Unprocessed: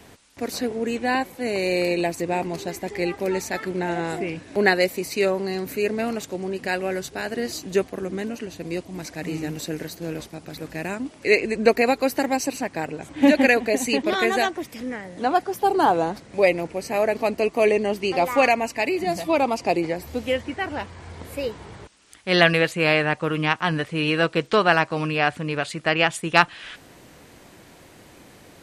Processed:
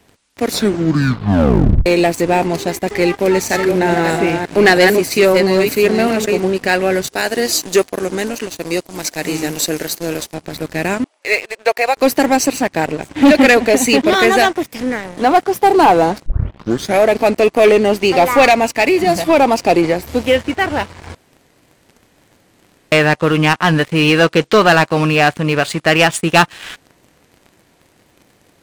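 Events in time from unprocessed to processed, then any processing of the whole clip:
0:00.46: tape stop 1.40 s
0:03.16–0:06.52: delay that plays each chunk backwards 324 ms, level −5.5 dB
0:07.07–0:10.34: bass and treble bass −8 dB, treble +7 dB
0:11.04–0:11.97: four-pole ladder high-pass 500 Hz, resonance 25%
0:16.26: tape start 0.74 s
0:21.15–0:22.92: fill with room tone
whole clip: leveller curve on the samples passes 3

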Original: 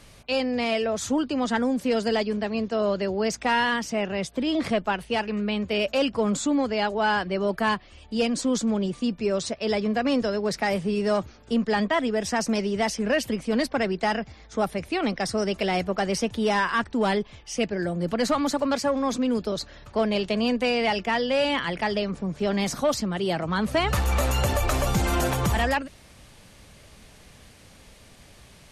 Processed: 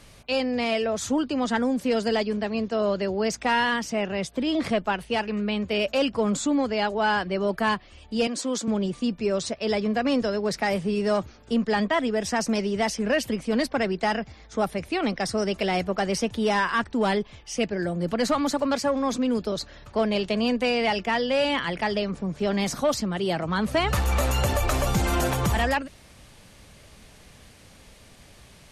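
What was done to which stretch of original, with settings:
0:08.27–0:08.68: Bessel high-pass filter 340 Hz

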